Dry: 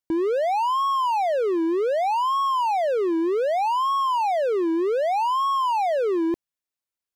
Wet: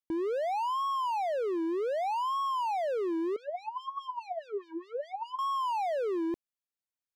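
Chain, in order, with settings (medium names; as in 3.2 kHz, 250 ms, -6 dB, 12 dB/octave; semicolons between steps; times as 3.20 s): 3.36–5.39 s: LFO band-pass sine 4.8 Hz 400–4500 Hz; trim -8.5 dB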